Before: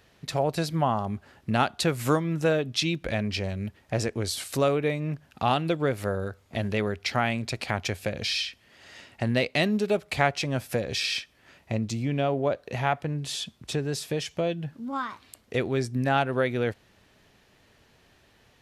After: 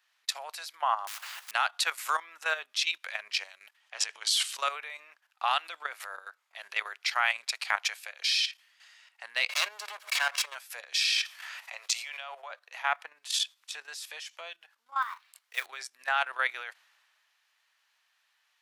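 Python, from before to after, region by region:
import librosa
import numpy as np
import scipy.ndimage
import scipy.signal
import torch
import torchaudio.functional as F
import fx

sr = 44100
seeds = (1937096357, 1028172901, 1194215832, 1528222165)

y = fx.chain(x, sr, fx.quant_companded(bits=6),
    fx.low_shelf(hz=170.0, db=3.5),
    fx.spectral_comp(ratio=10.0), at=(1.07, 1.51))
y = fx.chain(y, sr, fx.peak_eq(hz=3100.0, db=8.0, octaves=0.32),
    fx.transient(attack_db=-2, sustain_db=8),
    fx.lowpass(hz=8800.0, slope=12), at=(3.8, 4.58))
y = fx.chain(y, sr, fx.lower_of_two(delay_ms=1.8),
    fx.pre_swell(db_per_s=79.0), at=(9.49, 10.55))
y = fx.chain(y, sr, fx.highpass(hz=540.0, slope=24),
    fx.env_flatten(amount_pct=50), at=(11.05, 12.51))
y = fx.chain(y, sr, fx.low_shelf(hz=280.0, db=-9.5),
    fx.quant_float(bits=2),
    fx.doubler(ms=23.0, db=-11.0), at=(15.02, 15.66))
y = scipy.signal.sosfilt(scipy.signal.butter(4, 1000.0, 'highpass', fs=sr, output='sos'), y)
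y = fx.level_steps(y, sr, step_db=11)
y = fx.band_widen(y, sr, depth_pct=40)
y = y * 10.0 ** (5.0 / 20.0)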